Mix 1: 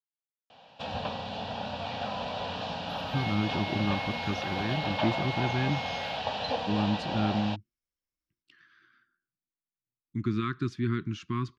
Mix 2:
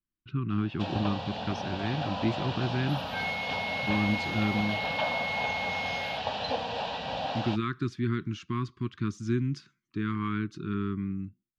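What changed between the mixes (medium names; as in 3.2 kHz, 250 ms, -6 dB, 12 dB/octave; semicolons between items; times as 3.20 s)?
speech: entry -2.80 s; second sound +6.5 dB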